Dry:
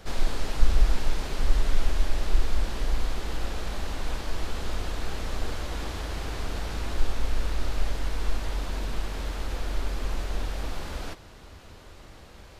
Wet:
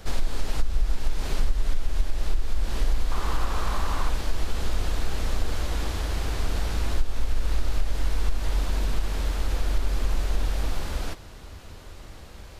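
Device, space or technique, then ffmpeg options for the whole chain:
ASMR close-microphone chain: -filter_complex "[0:a]asettb=1/sr,asplit=3[link_01][link_02][link_03];[link_01]atrim=end=3.114[link_04];[link_02]atrim=start=3.11:end=4.1,asetpts=PTS-STARTPTS,afade=type=in:duration=0.004:curve=qsin,afade=type=out:start_time=0.986:duration=0.004:curve=qsin,equalizer=frequency=1100:width=2.1:gain=12.5[link_05];[link_03]atrim=start=4.096[link_06];[link_04][link_05]acrossfade=duration=0.004:curve1=hsin:curve2=qsin[link_07];[link_07][link_06]acrossfade=duration=0.004:curve1=qsin:curve2=hsin,lowshelf=frequency=110:gain=5.5,acompressor=threshold=-17dB:ratio=10,highshelf=frequency=6500:gain=5,volume=1.5dB"

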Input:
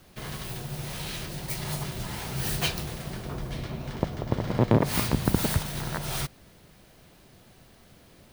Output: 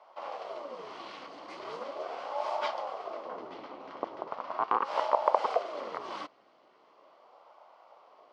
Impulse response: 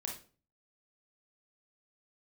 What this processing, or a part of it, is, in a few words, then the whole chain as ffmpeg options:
voice changer toy: -filter_complex "[0:a]asettb=1/sr,asplit=3[link_01][link_02][link_03];[link_01]atrim=end=4.294[link_04];[link_02]atrim=start=4.29:end=4.89,asetpts=PTS-STARTPTS,afade=type=in:duration=0.004:curve=qsin,afade=type=out:start_time=0.596:duration=0.004:curve=qsin,highpass=frequency=410:poles=1[link_05];[link_03]atrim=start=4.886[link_06];[link_04][link_05]acrossfade=duration=0.004:curve1=hsin:curve2=qsin[link_07];[link_07][link_06]acrossfade=duration=0.004:curve1=qsin:curve2=hsin,aeval=exprs='val(0)*sin(2*PI*440*n/s+440*0.7/0.39*sin(2*PI*0.39*n/s))':channel_layout=same,highpass=560,equalizer=frequency=620:width_type=q:width=4:gain=5,equalizer=frequency=1100:width_type=q:width=4:gain=8,equalizer=frequency=1700:width_type=q:width=4:gain=-9,equalizer=frequency=2500:width_type=q:width=4:gain=-7,equalizer=frequency=3700:width_type=q:width=4:gain=-10,lowpass=frequency=3900:width=0.5412,lowpass=frequency=3900:width=1.3066"

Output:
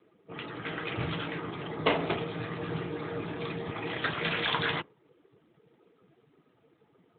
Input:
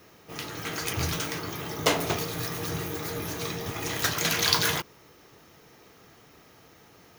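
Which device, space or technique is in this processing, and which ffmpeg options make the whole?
mobile call with aggressive noise cancelling: -filter_complex "[0:a]asplit=3[link_01][link_02][link_03];[link_01]afade=type=out:start_time=3.71:duration=0.02[link_04];[link_02]highpass=79,afade=type=in:start_time=3.71:duration=0.02,afade=type=out:start_time=4.51:duration=0.02[link_05];[link_03]afade=type=in:start_time=4.51:duration=0.02[link_06];[link_04][link_05][link_06]amix=inputs=3:normalize=0,highpass=110,afftdn=noise_reduction=14:noise_floor=-46" -ar 8000 -c:a libopencore_amrnb -b:a 12200

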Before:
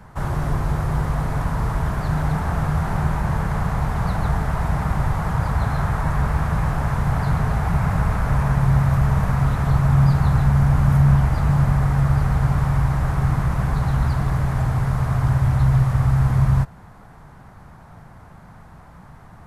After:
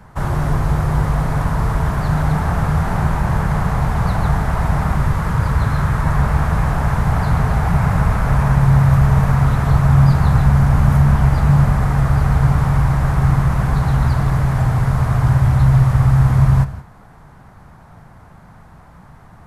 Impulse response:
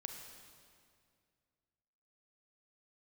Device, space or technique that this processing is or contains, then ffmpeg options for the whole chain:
keyed gated reverb: -filter_complex "[0:a]asplit=3[link_01][link_02][link_03];[1:a]atrim=start_sample=2205[link_04];[link_02][link_04]afir=irnorm=-1:irlink=0[link_05];[link_03]apad=whole_len=858355[link_06];[link_05][link_06]sidechaingate=range=-33dB:threshold=-37dB:ratio=16:detection=peak,volume=-2.5dB[link_07];[link_01][link_07]amix=inputs=2:normalize=0,asettb=1/sr,asplit=3[link_08][link_09][link_10];[link_08]atrim=end=4.954[link_11];[link_09]atrim=start=4.95:end=6.07,asetpts=PTS-STARTPTS,afade=type=in:duration=0.004:curve=qsin,afade=type=out:start_time=1.116:duration=0.004:curve=qsin,equalizer=frequency=740:width_type=o:width=0.44:gain=-6.5[link_12];[link_10]atrim=start=6.066[link_13];[link_11][link_12]acrossfade=duration=0.004:curve1=hsin:curve2=qsin[link_14];[link_14][link_13]acrossfade=duration=0.004:curve1=qsin:curve2=hsin,volume=1dB"

